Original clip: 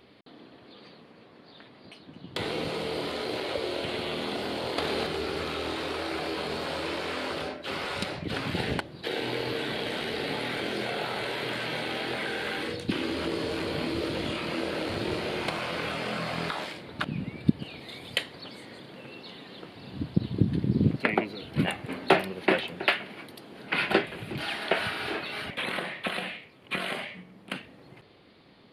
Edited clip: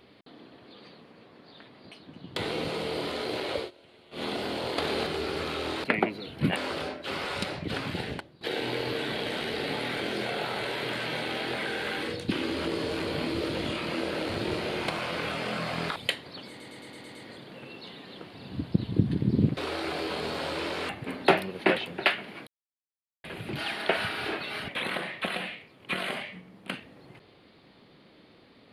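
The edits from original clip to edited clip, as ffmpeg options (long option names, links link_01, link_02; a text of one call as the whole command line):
ffmpeg -i in.wav -filter_complex "[0:a]asplit=17[link_01][link_02][link_03][link_04][link_05][link_06][link_07][link_08][link_09][link_10][link_11][link_12][link_13][link_14][link_15][link_16][link_17];[link_01]atrim=end=3.71,asetpts=PTS-STARTPTS,afade=type=out:start_time=3.59:duration=0.12:silence=0.0630957[link_18];[link_02]atrim=start=3.71:end=4.11,asetpts=PTS-STARTPTS,volume=-24dB[link_19];[link_03]atrim=start=4.11:end=5.842,asetpts=PTS-STARTPTS,afade=type=in:duration=0.12:silence=0.0630957[link_20];[link_04]atrim=start=20.988:end=21.712[link_21];[link_05]atrim=start=7.158:end=9.01,asetpts=PTS-STARTPTS,afade=type=out:start_time=1.152:duration=0.7:silence=0.16788[link_22];[link_06]atrim=start=9.01:end=16.562,asetpts=PTS-STARTPTS,afade=type=in:duration=0.004:curve=hsin:silence=0.16788[link_23];[link_07]atrim=start=18.038:end=18.682[link_24];[link_08]atrim=start=18.568:end=18.682[link_25];[link_09]atrim=start=18.568:end=18.682[link_26];[link_10]atrim=start=18.568:end=18.682[link_27];[link_11]atrim=start=18.568:end=18.682[link_28];[link_12]atrim=start=18.568:end=18.682[link_29];[link_13]atrim=start=18.568:end=20.992[link_30];[link_14]atrim=start=5.838:end=7.162[link_31];[link_15]atrim=start=21.708:end=23.29,asetpts=PTS-STARTPTS,afade=type=out:start_time=1.578:duration=0.004:curve=hsin[link_32];[link_16]atrim=start=23.29:end=24.06,asetpts=PTS-STARTPTS,volume=0[link_33];[link_17]atrim=start=24.06,asetpts=PTS-STARTPTS,afade=type=in:duration=0.004:curve=hsin[link_34];[link_18][link_19][link_20]concat=n=3:v=0:a=1[link_35];[link_35][link_21]acrossfade=duration=0.004:curve1=hsin:curve2=hsin[link_36];[link_22][link_23]concat=n=2:v=0:a=1[link_37];[link_36][link_37]acrossfade=duration=0.004:curve1=hsin:curve2=hsin[link_38];[link_38][link_24]acrossfade=duration=0.004:curve1=hsin:curve2=hsin[link_39];[link_39][link_25]acrossfade=duration=0.004:curve1=hsin:curve2=hsin[link_40];[link_40][link_26]acrossfade=duration=0.004:curve1=hsin:curve2=hsin[link_41];[link_41][link_27]acrossfade=duration=0.004:curve1=hsin:curve2=hsin[link_42];[link_42][link_28]acrossfade=duration=0.004:curve1=hsin:curve2=hsin[link_43];[link_43][link_29]acrossfade=duration=0.004:curve1=hsin:curve2=hsin[link_44];[link_44][link_30]acrossfade=duration=0.004:curve1=hsin:curve2=hsin[link_45];[link_45][link_31]acrossfade=duration=0.004:curve1=hsin:curve2=hsin[link_46];[link_32][link_33][link_34]concat=n=3:v=0:a=1[link_47];[link_46][link_47]acrossfade=duration=0.004:curve1=hsin:curve2=hsin" out.wav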